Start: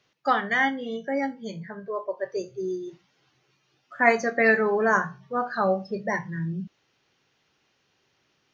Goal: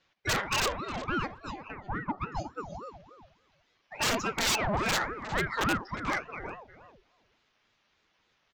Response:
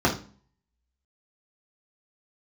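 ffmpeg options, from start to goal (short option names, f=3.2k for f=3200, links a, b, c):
-filter_complex "[0:a]highpass=480,adynamicsmooth=sensitivity=8:basefreq=5.6k,flanger=delay=5.5:depth=4.7:regen=4:speed=0.32:shape=triangular,aresample=16000,aeval=exprs='(mod(9.44*val(0)+1,2)-1)/9.44':c=same,aresample=44100,asplit=2[a][b];[b]adelay=361,lowpass=f=1.2k:p=1,volume=-11.5dB,asplit=2[c][d];[d]adelay=361,lowpass=f=1.2k:p=1,volume=0.15[e];[a][c][e]amix=inputs=3:normalize=0,asoftclip=type=tanh:threshold=-27dB,aeval=exprs='val(0)*sin(2*PI*550*n/s+550*0.65/3.5*sin(2*PI*3.5*n/s))':c=same,volume=6dB"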